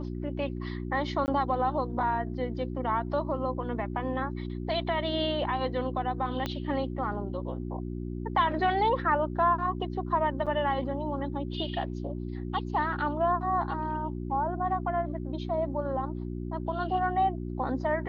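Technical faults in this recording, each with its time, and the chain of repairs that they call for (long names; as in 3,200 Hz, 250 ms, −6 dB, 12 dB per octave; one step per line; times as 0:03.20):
mains hum 60 Hz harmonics 6 −35 dBFS
0:01.26–0:01.28: drop-out 19 ms
0:06.46: click −17 dBFS
0:10.46–0:10.47: drop-out 6.5 ms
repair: click removal
hum removal 60 Hz, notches 6
repair the gap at 0:01.26, 19 ms
repair the gap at 0:10.46, 6.5 ms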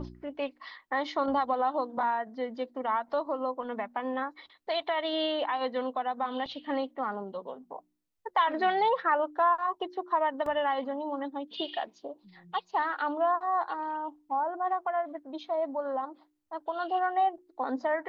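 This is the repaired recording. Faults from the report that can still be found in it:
0:06.46: click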